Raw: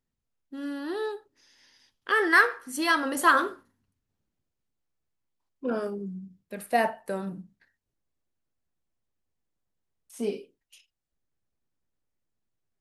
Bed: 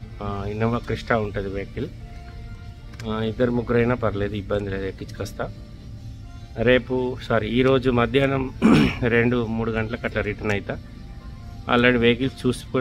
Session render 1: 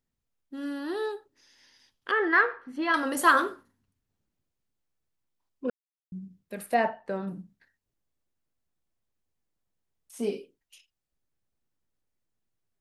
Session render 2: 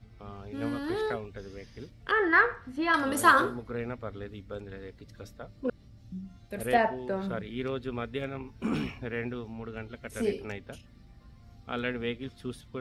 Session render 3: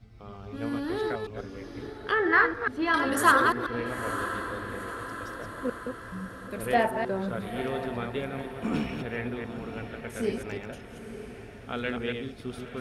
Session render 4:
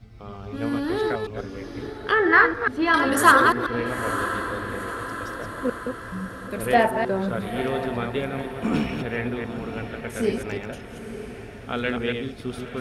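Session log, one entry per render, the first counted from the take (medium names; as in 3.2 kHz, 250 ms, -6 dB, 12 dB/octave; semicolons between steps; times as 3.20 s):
2.11–2.94 s: distance through air 360 m; 5.70–6.12 s: mute; 6.74–7.28 s: distance through air 160 m
add bed -15.5 dB
chunks repeated in reverse 141 ms, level -5 dB; on a send: echo that smears into a reverb 935 ms, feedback 58%, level -11 dB
trim +5.5 dB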